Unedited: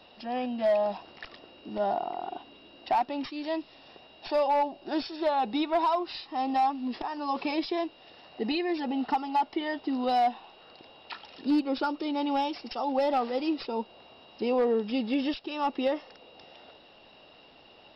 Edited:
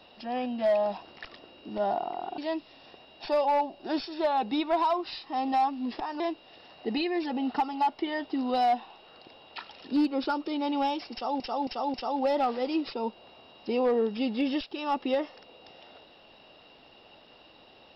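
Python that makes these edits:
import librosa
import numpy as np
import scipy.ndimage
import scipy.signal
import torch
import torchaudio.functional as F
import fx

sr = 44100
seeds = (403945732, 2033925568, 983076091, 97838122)

y = fx.edit(x, sr, fx.cut(start_s=2.38, length_s=1.02),
    fx.cut(start_s=7.22, length_s=0.52),
    fx.repeat(start_s=12.67, length_s=0.27, count=4), tone=tone)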